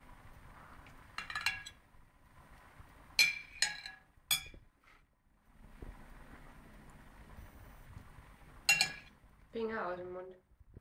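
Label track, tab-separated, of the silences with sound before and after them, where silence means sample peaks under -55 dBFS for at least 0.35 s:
4.970000	5.500000	silence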